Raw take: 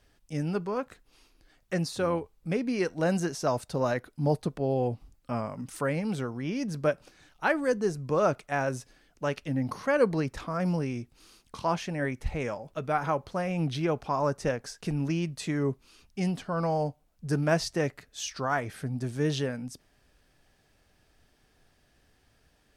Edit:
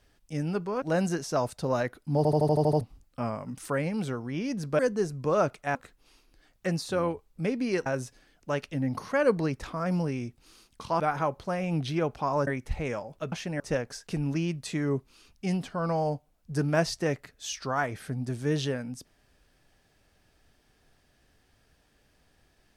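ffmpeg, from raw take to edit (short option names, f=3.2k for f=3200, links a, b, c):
-filter_complex "[0:a]asplit=17[a][b][c][d][e][f][g][h][i][j][k][l][m][n][o][p][q];[a]atrim=end=0.822[r];[b]atrim=start=2.928:end=4.362[s];[c]atrim=start=4.278:end=4.362[t];[d]atrim=start=4.278:end=4.362[u];[e]atrim=start=4.278:end=4.362[v];[f]atrim=start=4.278:end=4.362[w];[g]atrim=start=4.278:end=4.362[x];[h]atrim=start=4.278:end=4.362[y];[i]atrim=start=4.278:end=4.362[z];[j]atrim=start=4.918:end=6.902[aa];[k]atrim=start=7.638:end=8.602[ab];[l]atrim=start=0.818:end=2.932[ac];[m]atrim=start=8.598:end=11.742[ad];[n]atrim=start=12.868:end=14.342[ae];[o]atrim=start=12.018:end=12.872[af];[p]atrim=start=11.738:end=12.022[ag];[q]atrim=start=14.338[ah];[r][s]acrossfade=d=0.004:c1=hsin:c2=hsin[ai];[ai][t]acrossfade=d=0.004:c1=hsin:c2=hsin[aj];[aj][u]acrossfade=d=0.004:c1=hsin:c2=hsin[ak];[ak][v]acrossfade=d=0.004:c1=hsin:c2=hsin[al];[al][w]acrossfade=d=0.004:c1=hsin:c2=hsin[am];[am][x]acrossfade=d=0.004:c1=hsin:c2=hsin[an];[an][y]acrossfade=d=0.004:c1=hsin:c2=hsin[ao];[ao][z]acrossfade=d=0.004:c1=hsin:c2=hsin[ap];[ap][aa]acrossfade=d=0.004:c1=hsin:c2=hsin[aq];[aq][ab]acrossfade=d=0.004:c1=hsin:c2=hsin[ar];[ar][ac]acrossfade=d=0.004:c1=hsin:c2=hsin[as];[as][ad]acrossfade=d=0.004:c1=hsin:c2=hsin[at];[at][ae]acrossfade=d=0.004:c1=hsin:c2=hsin[au];[au][af]acrossfade=d=0.004:c1=hsin:c2=hsin[av];[av][ag]acrossfade=d=0.004:c1=hsin:c2=hsin[aw];[aw][ah]acrossfade=d=0.004:c1=hsin:c2=hsin"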